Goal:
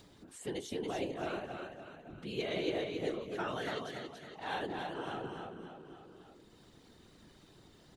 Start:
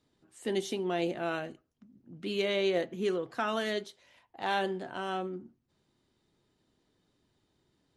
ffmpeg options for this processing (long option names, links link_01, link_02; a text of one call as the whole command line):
ffmpeg -i in.wav -af "aecho=1:1:280|560|840|1120:0.596|0.203|0.0689|0.0234,acompressor=mode=upward:threshold=-35dB:ratio=2.5,afftfilt=real='hypot(re,im)*cos(2*PI*random(0))':imag='hypot(re,im)*sin(2*PI*random(1))':win_size=512:overlap=0.75,volume=-1dB" out.wav